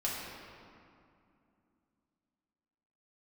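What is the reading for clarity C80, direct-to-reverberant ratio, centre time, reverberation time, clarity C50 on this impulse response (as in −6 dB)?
1.0 dB, −6.0 dB, 124 ms, 2.5 s, −0.5 dB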